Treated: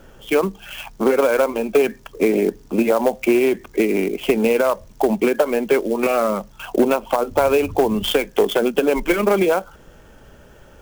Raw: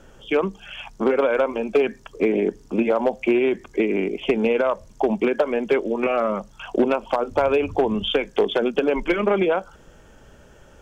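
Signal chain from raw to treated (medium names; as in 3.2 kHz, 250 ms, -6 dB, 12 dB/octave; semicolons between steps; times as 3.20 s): sampling jitter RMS 0.022 ms; trim +3 dB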